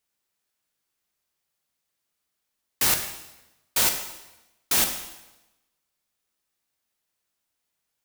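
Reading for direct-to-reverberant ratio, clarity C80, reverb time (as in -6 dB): 5.0 dB, 10.0 dB, 1.0 s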